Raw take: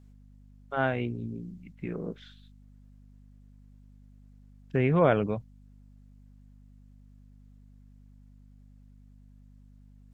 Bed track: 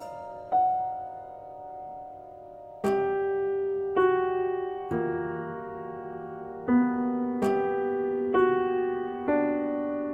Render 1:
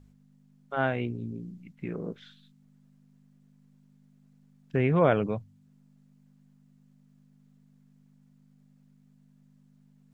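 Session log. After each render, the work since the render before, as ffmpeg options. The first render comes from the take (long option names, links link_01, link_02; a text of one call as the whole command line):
ffmpeg -i in.wav -af "bandreject=frequency=50:width_type=h:width=4,bandreject=frequency=100:width_type=h:width=4" out.wav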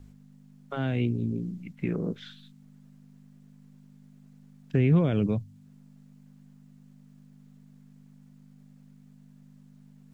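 ffmpeg -i in.wav -filter_complex "[0:a]asplit=2[link_01][link_02];[link_02]alimiter=limit=-18.5dB:level=0:latency=1,volume=2dB[link_03];[link_01][link_03]amix=inputs=2:normalize=0,acrossover=split=330|3000[link_04][link_05][link_06];[link_05]acompressor=threshold=-37dB:ratio=6[link_07];[link_04][link_07][link_06]amix=inputs=3:normalize=0" out.wav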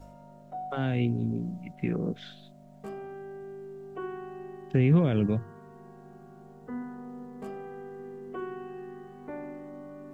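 ffmpeg -i in.wav -i bed.wav -filter_complex "[1:a]volume=-14.5dB[link_01];[0:a][link_01]amix=inputs=2:normalize=0" out.wav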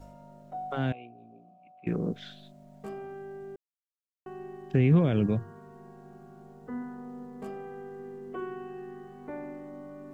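ffmpeg -i in.wav -filter_complex "[0:a]asettb=1/sr,asplit=3[link_01][link_02][link_03];[link_01]atrim=end=0.924[link_04];[link_02]atrim=start=0.92:end=1.87,asetpts=PTS-STARTPTS,afade=type=in:duration=0.004:curve=qsin,afade=type=out:start_time=0.946:duration=0.004:curve=qsin,asplit=3[link_05][link_06][link_07];[link_05]bandpass=frequency=730:width_type=q:width=8,volume=0dB[link_08];[link_06]bandpass=frequency=1090:width_type=q:width=8,volume=-6dB[link_09];[link_07]bandpass=frequency=2440:width_type=q:width=8,volume=-9dB[link_10];[link_08][link_09][link_10]amix=inputs=3:normalize=0[link_11];[link_03]atrim=start=1.866[link_12];[link_04][link_11]acrossfade=duration=0.004:curve1=hsin:curve2=qsin[link_13];[link_13][link_12]acrossfade=duration=0.004:curve1=qsin:curve2=hsin,asplit=3[link_14][link_15][link_16];[link_14]atrim=end=3.56,asetpts=PTS-STARTPTS,afade=type=out:start_time=3.556:duration=0.004:curve=hsin[link_17];[link_15]atrim=start=3.56:end=4.26,asetpts=PTS-STARTPTS,volume=0[link_18];[link_16]atrim=start=4.26,asetpts=PTS-STARTPTS,afade=type=in:duration=0.004:curve=hsin[link_19];[link_17][link_18][link_19]concat=n=3:v=0:a=1" out.wav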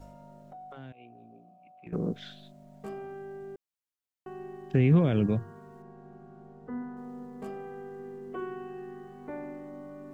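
ffmpeg -i in.wav -filter_complex "[0:a]asettb=1/sr,asplit=3[link_01][link_02][link_03];[link_01]atrim=end=0.524[link_04];[link_02]atrim=start=0.52:end=1.93,asetpts=PTS-STARTPTS,afade=type=in:duration=0.004:curve=qsin,afade=type=out:start_time=1.406:duration=0.004:curve=qsin,acompressor=threshold=-47dB:ratio=3:attack=3.2:release=140:knee=1:detection=peak[link_05];[link_03]atrim=start=1.926[link_06];[link_04][link_05]acrossfade=duration=0.004:curve1=hsin:curve2=qsin[link_07];[link_07][link_06]acrossfade=duration=0.004:curve1=qsin:curve2=hsin,asettb=1/sr,asplit=3[link_08][link_09][link_10];[link_08]atrim=end=5.824[link_11];[link_09]atrim=start=5.82:end=6.97,asetpts=PTS-STARTPTS,afade=type=in:duration=0.004:curve=qsin,afade=type=out:start_time=1.146:duration=0.004:curve=qsin,aemphasis=mode=reproduction:type=75kf[link_12];[link_10]atrim=start=6.966[link_13];[link_11][link_12]acrossfade=duration=0.004:curve1=hsin:curve2=qsin[link_14];[link_14][link_13]acrossfade=duration=0.004:curve1=qsin:curve2=hsin" out.wav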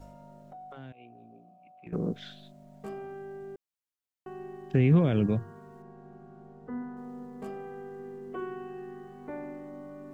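ffmpeg -i in.wav -af anull out.wav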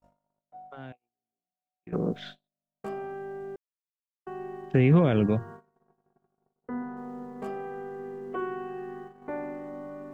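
ffmpeg -i in.wav -af "agate=range=-45dB:threshold=-45dB:ratio=16:detection=peak,equalizer=frequency=1000:width=0.38:gain=6.5" out.wav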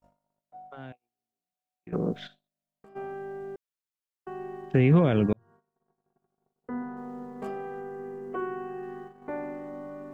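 ffmpeg -i in.wav -filter_complex "[0:a]asplit=3[link_01][link_02][link_03];[link_01]afade=type=out:start_time=2.26:duration=0.02[link_04];[link_02]acompressor=threshold=-54dB:ratio=4:attack=3.2:release=140:knee=1:detection=peak,afade=type=in:start_time=2.26:duration=0.02,afade=type=out:start_time=2.95:duration=0.02[link_05];[link_03]afade=type=in:start_time=2.95:duration=0.02[link_06];[link_04][link_05][link_06]amix=inputs=3:normalize=0,asettb=1/sr,asplit=3[link_07][link_08][link_09];[link_07]atrim=end=7.804[link_10];[link_08]atrim=start=7.8:end=8.83,asetpts=PTS-STARTPTS,afade=type=in:duration=0.004:curve=qsin,afade=type=out:start_time=1.026:duration=0.004:curve=qsin,equalizer=frequency=3600:width=1.7:gain=-6[link_11];[link_09]atrim=start=8.826[link_12];[link_10][link_11]acrossfade=duration=0.004:curve1=hsin:curve2=qsin[link_13];[link_13][link_12]acrossfade=duration=0.004:curve1=qsin:curve2=hsin,asplit=2[link_14][link_15];[link_14]atrim=end=5.33,asetpts=PTS-STARTPTS,afade=type=out:start_time=5.326:duration=0.004:curve=hsin[link_16];[link_15]atrim=start=5.33,asetpts=PTS-STARTPTS,afade=type=in:duration=1.38[link_17];[link_16][link_17]concat=n=2:v=0:a=1" out.wav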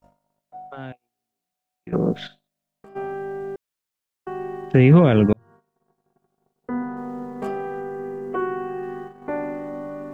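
ffmpeg -i in.wav -af "volume=7.5dB,alimiter=limit=-3dB:level=0:latency=1" out.wav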